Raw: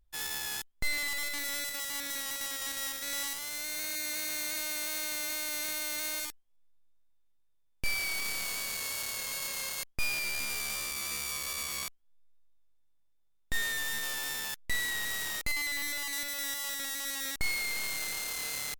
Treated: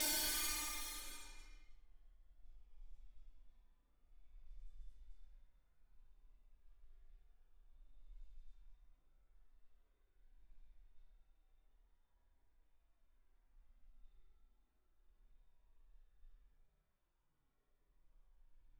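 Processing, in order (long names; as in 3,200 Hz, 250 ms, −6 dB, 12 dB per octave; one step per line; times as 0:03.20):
random phases in long frames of 200 ms
extreme stretch with random phases 14×, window 0.05 s, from 0:06.32
low-pass that shuts in the quiet parts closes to 1,700 Hz, open at −50.5 dBFS
level +7.5 dB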